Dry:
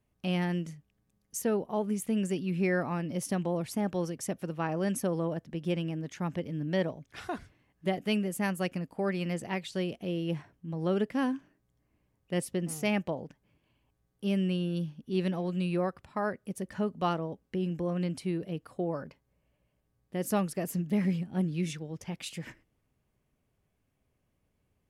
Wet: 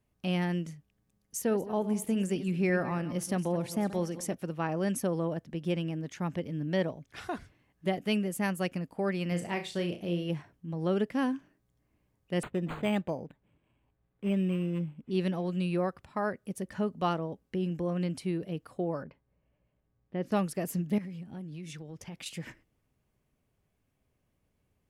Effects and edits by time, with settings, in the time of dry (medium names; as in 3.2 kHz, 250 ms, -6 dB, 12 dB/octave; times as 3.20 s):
1.40–4.35 s: backward echo that repeats 108 ms, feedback 42%, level -13 dB
9.28–10.30 s: flutter echo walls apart 5.9 m, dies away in 0.29 s
12.43–15.11 s: decimation joined by straight lines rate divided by 8×
19.03–20.32 s: distance through air 300 m
20.98–22.26 s: compression, threshold -39 dBFS